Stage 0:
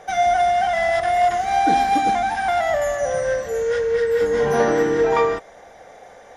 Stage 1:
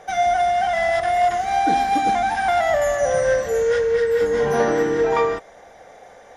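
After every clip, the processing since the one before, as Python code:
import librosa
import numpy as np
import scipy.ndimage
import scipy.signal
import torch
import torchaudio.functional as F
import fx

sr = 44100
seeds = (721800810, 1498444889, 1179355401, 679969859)

y = fx.rider(x, sr, range_db=10, speed_s=0.5)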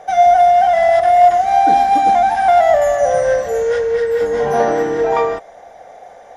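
y = fx.peak_eq(x, sr, hz=700.0, db=9.0, octaves=0.69)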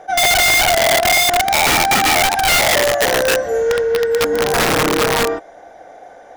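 y = fx.small_body(x, sr, hz=(310.0, 1500.0), ring_ms=40, db=11)
y = (np.mod(10.0 ** (8.0 / 20.0) * y + 1.0, 2.0) - 1.0) / 10.0 ** (8.0 / 20.0)
y = fx.attack_slew(y, sr, db_per_s=550.0)
y = y * 10.0 ** (-1.5 / 20.0)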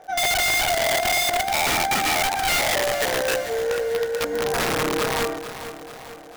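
y = fx.dmg_crackle(x, sr, seeds[0], per_s=77.0, level_db=-29.0)
y = fx.echo_feedback(y, sr, ms=443, feedback_pct=53, wet_db=-12)
y = y * 10.0 ** (-8.0 / 20.0)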